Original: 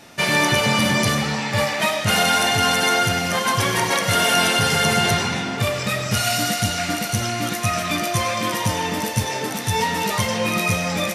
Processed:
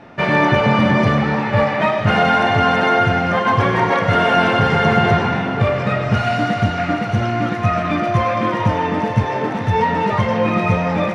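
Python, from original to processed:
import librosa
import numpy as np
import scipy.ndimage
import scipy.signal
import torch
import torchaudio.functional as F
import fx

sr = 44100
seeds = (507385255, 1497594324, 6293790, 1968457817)

y = scipy.signal.sosfilt(scipy.signal.butter(2, 1600.0, 'lowpass', fs=sr, output='sos'), x)
y = y + 10.0 ** (-13.5 / 20.0) * np.pad(y, (int(950 * sr / 1000.0), 0))[:len(y)]
y = F.gain(torch.from_numpy(y), 6.0).numpy()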